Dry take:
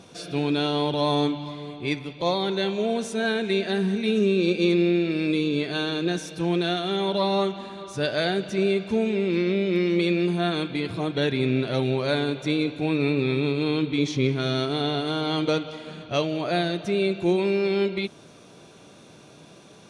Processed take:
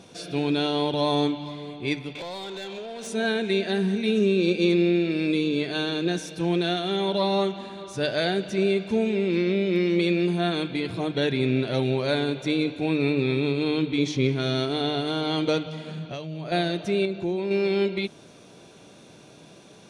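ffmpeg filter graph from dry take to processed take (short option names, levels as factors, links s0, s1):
-filter_complex "[0:a]asettb=1/sr,asplit=3[s0][s1][s2];[s0]atrim=end=2.154[s3];[s1]atrim=start=2.15:end=3.07,asetpts=PTS-STARTPTS,afade=t=in:d=0.004:c=qsin,afade=t=out:st=0.916:d=0.004:c=qsin,acompressor=threshold=0.0126:ratio=16:attack=3.2:release=140:knee=1:detection=peak,asplit=2[s4][s5];[s5]highpass=f=720:p=1,volume=11.2,asoftclip=type=tanh:threshold=0.0501[s6];[s4][s6]amix=inputs=2:normalize=0,lowpass=f=7300:p=1,volume=0.501[s7];[s2]atrim=start=3.066[s8];[s3][s7]acrossfade=d=0.004:c1=hsin:c2=qsin[s9];[s9][s8]acrossfade=d=0.004:c1=qsin:c2=hsin,asettb=1/sr,asplit=3[s10][s11][s12];[s10]atrim=end=15.664[s13];[s11]atrim=start=15.66:end=16.52,asetpts=PTS-STARTPTS,afade=t=in:d=0.004:c=qsin,afade=t=out:st=0.856:d=0.004:c=qsin,highpass=110,equalizer=f=160:t=o:w=0.22:g=15,acompressor=threshold=0.0355:ratio=12:attack=3.2:release=140:knee=1:detection=peak[s14];[s12]atrim=start=16.516[s15];[s13][s14]acrossfade=d=0.004:c1=hsin:c2=qsin[s16];[s16][s15]acrossfade=d=0.004:c1=qsin:c2=hsin,asettb=1/sr,asplit=3[s17][s18][s19];[s17]atrim=end=17.054[s20];[s18]atrim=start=17.05:end=17.51,asetpts=PTS-STARTPTS,afade=t=in:d=0.004:c=qsin,afade=t=out:st=0.456:d=0.004:c=qsin,lowpass=6100,acompressor=threshold=0.0631:ratio=3:attack=3.2:release=140:knee=1:detection=peak,equalizer=f=2700:t=o:w=1.4:g=-4.5[s21];[s19]atrim=start=17.506[s22];[s20][s21]acrossfade=d=0.004:c1=hsin:c2=qsin[s23];[s23][s22]acrossfade=d=0.004:c1=qsin:c2=hsin,equalizer=f=1200:w=3.3:g=-3.5,bandreject=f=50:t=h:w=6,bandreject=f=100:t=h:w=6,bandreject=f=150:t=h:w=6"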